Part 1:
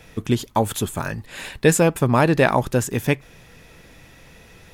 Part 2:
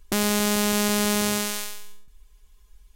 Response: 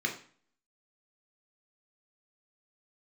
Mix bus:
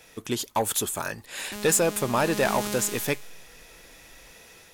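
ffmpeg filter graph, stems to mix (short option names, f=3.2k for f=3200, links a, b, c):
-filter_complex "[0:a]bass=f=250:g=-12,treble=f=4k:g=7,volume=-5dB[a];[1:a]adelay=1400,volume=-9dB,afade=t=in:st=2.14:d=0.42:silence=0.398107[b];[a][b]amix=inputs=2:normalize=0,dynaudnorm=f=200:g=3:m=3dB,asoftclip=type=tanh:threshold=-15dB"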